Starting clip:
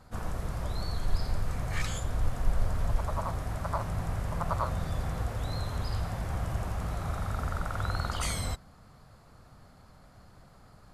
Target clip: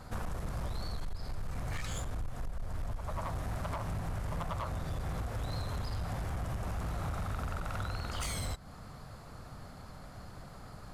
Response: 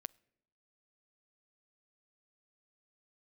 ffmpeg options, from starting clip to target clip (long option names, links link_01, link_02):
-filter_complex "[0:a]acompressor=threshold=-37dB:ratio=20,asplit=2[link_01][link_02];[1:a]atrim=start_sample=2205[link_03];[link_02][link_03]afir=irnorm=-1:irlink=0,volume=4dB[link_04];[link_01][link_04]amix=inputs=2:normalize=0,volume=32.5dB,asoftclip=hard,volume=-32.5dB,volume=1dB"